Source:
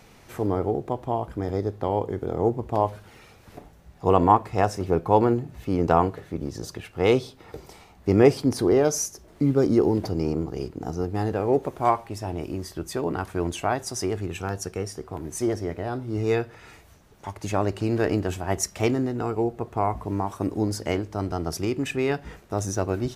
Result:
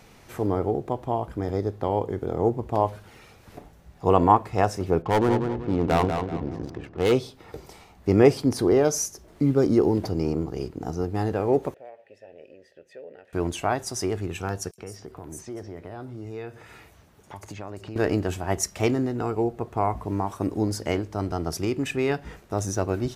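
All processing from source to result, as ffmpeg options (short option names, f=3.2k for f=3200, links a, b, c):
-filter_complex "[0:a]asettb=1/sr,asplit=3[a][b][c];[a]atrim=end=5.024[d];[b]atrim=start=5.02:end=7.12,asetpts=PTS-STARTPTS,afade=t=in:d=0.004:c=qsin,afade=t=out:st=2.096:d=0.004:c=qsin,asoftclip=type=hard:threshold=-15.5dB,asplit=2[e][f];[f]adelay=189,lowpass=f=4.6k:p=1,volume=-6dB,asplit=2[g][h];[h]adelay=189,lowpass=f=4.6k:p=1,volume=0.38,asplit=2[i][j];[j]adelay=189,lowpass=f=4.6k:p=1,volume=0.38,asplit=2[k][l];[l]adelay=189,lowpass=f=4.6k:p=1,volume=0.38,asplit=2[m][n];[n]adelay=189,lowpass=f=4.6k:p=1,volume=0.38[o];[e][g][i][k][m][o]amix=inputs=6:normalize=0,atrim=end_sample=92610,adynamicsmooth=sensitivity=6.5:basefreq=790[p];[c]atrim=start=7.116[q];[d][p]acrossfade=d=0.004:c1=hsin:c2=qsin[r];[r][q]acrossfade=d=0.004:c1=qsin:c2=hsin,asettb=1/sr,asplit=3[s][t][u];[s]atrim=end=11.744[v];[t]atrim=start=11.74:end=13.33,asetpts=PTS-STARTPTS,afade=t=in:d=0.004:c=qsin,afade=t=out:st=1.586:d=0.004:c=qsin,equalizer=f=330:t=o:w=0.2:g=-10.5,acompressor=threshold=-28dB:ratio=2.5:attack=3.2:release=140:knee=1:detection=peak,asplit=3[w][x][y];[w]bandpass=f=530:t=q:w=8,volume=0dB[z];[x]bandpass=f=1.84k:t=q:w=8,volume=-6dB[aa];[y]bandpass=f=2.48k:t=q:w=8,volume=-9dB[ab];[z][aa][ab]amix=inputs=3:normalize=0[ac];[u]atrim=start=13.326[ad];[v][ac]acrossfade=d=0.004:c1=hsin:c2=qsin[ae];[ae][ad]acrossfade=d=0.004:c1=qsin:c2=hsin,asettb=1/sr,asplit=3[af][ag][ah];[af]atrim=end=14.714[ai];[ag]atrim=start=14.71:end=17.96,asetpts=PTS-STARTPTS,afade=t=in:d=0.004:c=qsin,afade=t=out:st=3.246:d=0.004:c=qsin,highpass=52,acompressor=threshold=-36dB:ratio=3:attack=3.2:release=140:knee=1:detection=peak,acrossover=split=5800[aj][ak];[aj]adelay=70[al];[al][ak]amix=inputs=2:normalize=0,atrim=end_sample=143325[am];[ah]atrim=start=17.956[an];[ai][am]acrossfade=d=0.004:c1=hsin:c2=qsin[ao];[ao][an]acrossfade=d=0.004:c1=qsin:c2=hsin"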